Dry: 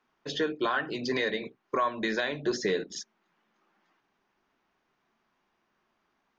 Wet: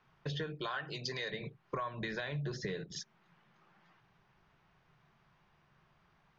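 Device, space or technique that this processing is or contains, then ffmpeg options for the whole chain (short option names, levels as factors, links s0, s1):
jukebox: -filter_complex "[0:a]lowpass=5100,lowshelf=f=190:t=q:w=3:g=9.5,acompressor=threshold=0.00708:ratio=4,asettb=1/sr,asplit=3[s0][s1][s2];[s0]atrim=end=0.614[s3];[s1]atrim=start=0.61:end=1.32,asetpts=PTS-STARTPTS,afade=t=in:d=0.004:c=qsin,afade=t=out:st=0.706:d=0.004:c=qsin,bass=f=250:g=-9,treble=f=4000:g=12[s4];[s2]atrim=start=1.316[s5];[s3][s4]acrossfade=d=0.004:c1=hsin:c2=qsin[s6];[s6][s5]acrossfade=d=0.004:c1=qsin:c2=hsin,volume=1.68"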